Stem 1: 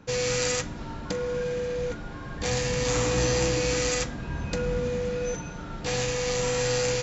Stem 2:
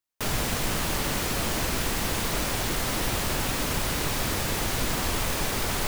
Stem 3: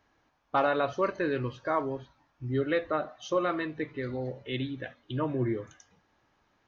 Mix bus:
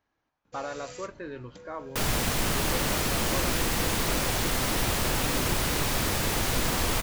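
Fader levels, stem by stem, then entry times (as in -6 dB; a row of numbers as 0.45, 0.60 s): -18.5, +0.5, -9.5 dB; 0.45, 1.75, 0.00 s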